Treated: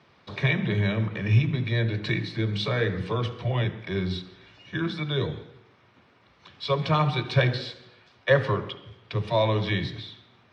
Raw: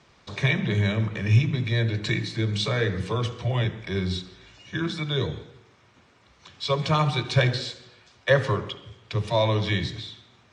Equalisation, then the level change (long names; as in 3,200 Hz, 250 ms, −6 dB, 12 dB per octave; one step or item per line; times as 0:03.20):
high-pass filter 90 Hz
high-frequency loss of the air 58 metres
parametric band 7,100 Hz −12 dB 0.58 octaves
0.0 dB